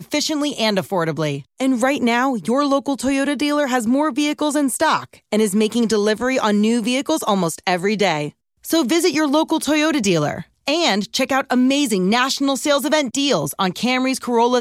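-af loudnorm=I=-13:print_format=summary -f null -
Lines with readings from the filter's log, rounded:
Input Integrated:    -18.5 LUFS
Input True Peak:      -5.3 dBTP
Input LRA:             1.0 LU
Input Threshold:     -28.5 LUFS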